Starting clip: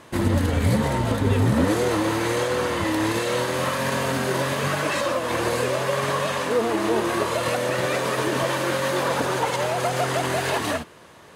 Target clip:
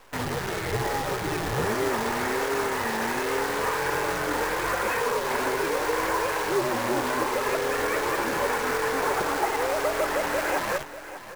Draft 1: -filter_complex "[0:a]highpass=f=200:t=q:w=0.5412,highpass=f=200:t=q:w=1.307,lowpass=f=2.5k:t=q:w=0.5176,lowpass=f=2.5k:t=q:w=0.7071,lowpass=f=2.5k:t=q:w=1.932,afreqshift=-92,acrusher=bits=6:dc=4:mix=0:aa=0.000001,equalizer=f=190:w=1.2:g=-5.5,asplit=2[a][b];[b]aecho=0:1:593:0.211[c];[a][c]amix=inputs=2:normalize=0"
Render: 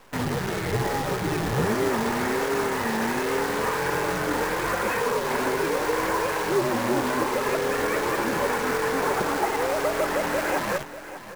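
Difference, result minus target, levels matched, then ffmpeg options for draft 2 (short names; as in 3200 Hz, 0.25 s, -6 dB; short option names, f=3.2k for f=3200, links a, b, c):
250 Hz band +3.0 dB
-filter_complex "[0:a]highpass=f=200:t=q:w=0.5412,highpass=f=200:t=q:w=1.307,lowpass=f=2.5k:t=q:w=0.5176,lowpass=f=2.5k:t=q:w=0.7071,lowpass=f=2.5k:t=q:w=1.932,afreqshift=-92,acrusher=bits=6:dc=4:mix=0:aa=0.000001,equalizer=f=190:w=1.2:g=-13.5,asplit=2[a][b];[b]aecho=0:1:593:0.211[c];[a][c]amix=inputs=2:normalize=0"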